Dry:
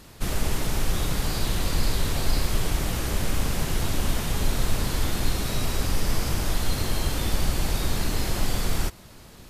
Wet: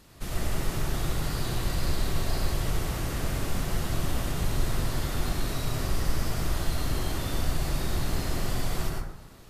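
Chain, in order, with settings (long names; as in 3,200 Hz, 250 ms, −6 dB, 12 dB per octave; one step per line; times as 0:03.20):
dense smooth reverb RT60 0.76 s, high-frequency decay 0.35×, pre-delay 85 ms, DRR −2 dB
level −7.5 dB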